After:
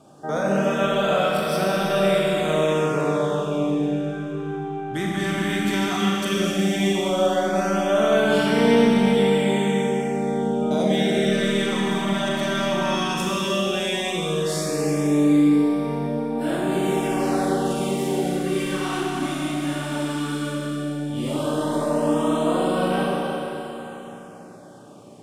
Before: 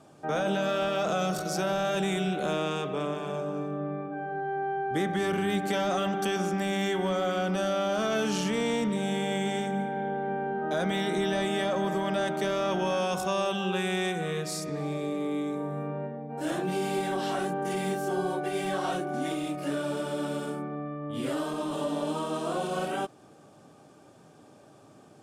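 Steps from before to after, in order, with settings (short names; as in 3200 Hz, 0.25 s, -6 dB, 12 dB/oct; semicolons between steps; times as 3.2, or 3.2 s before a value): Schroeder reverb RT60 3.8 s, combs from 30 ms, DRR -4 dB; LFO notch sine 0.14 Hz 470–7000 Hz; gain +3 dB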